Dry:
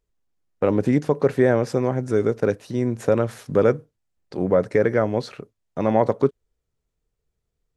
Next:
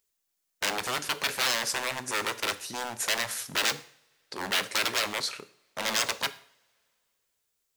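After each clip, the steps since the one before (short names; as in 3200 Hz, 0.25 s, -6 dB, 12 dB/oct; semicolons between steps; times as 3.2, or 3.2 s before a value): wavefolder -22.5 dBFS; tilt +4.5 dB/oct; two-slope reverb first 0.52 s, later 2.6 s, from -27 dB, DRR 12 dB; gain -2 dB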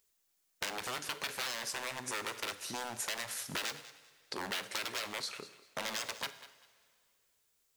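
compressor 4:1, threshold -40 dBFS, peak gain reduction 15.5 dB; thinning echo 0.196 s, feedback 25%, level -16 dB; gain +2.5 dB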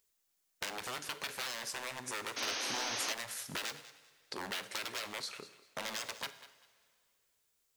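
painted sound noise, 2.36–3.13, 220–6600 Hz -36 dBFS; gain -2 dB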